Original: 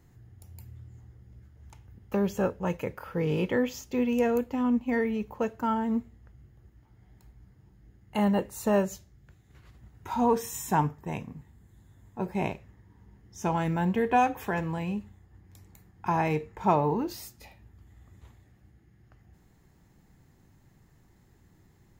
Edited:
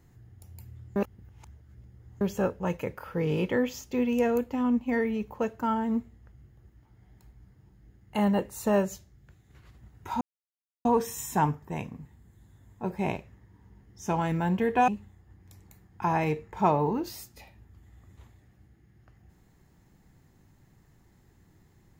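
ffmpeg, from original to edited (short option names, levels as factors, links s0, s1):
-filter_complex "[0:a]asplit=5[s0][s1][s2][s3][s4];[s0]atrim=end=0.962[s5];[s1]atrim=start=0.958:end=2.212,asetpts=PTS-STARTPTS,areverse[s6];[s2]atrim=start=2.208:end=10.21,asetpts=PTS-STARTPTS,afade=t=out:st=7.998:d=0.004:c=hsin,apad=pad_dur=0.64[s7];[s3]atrim=start=10.21:end=14.242,asetpts=PTS-STARTPTS,afade=t=in:d=0.004:c=hsin[s8];[s4]atrim=start=14.918[s9];[s5][s6]acrossfade=d=0.004:c1=hsin:c2=hsin[s10];[s7][s8]concat=n=2:v=0:a=1[s11];[s10][s11]acrossfade=d=0.004:c1=hsin:c2=hsin[s12];[s12][s9]acrossfade=d=0.004:c1=hsin:c2=hsin"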